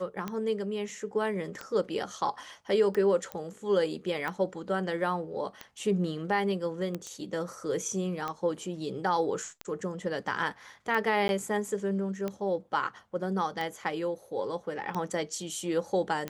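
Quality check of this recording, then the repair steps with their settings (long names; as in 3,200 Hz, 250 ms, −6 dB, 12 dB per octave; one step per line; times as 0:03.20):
scratch tick 45 rpm −20 dBFS
0:03.32: click −21 dBFS
0:07.07: click −28 dBFS
0:11.28–0:11.29: drop-out 11 ms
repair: click removal
repair the gap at 0:11.28, 11 ms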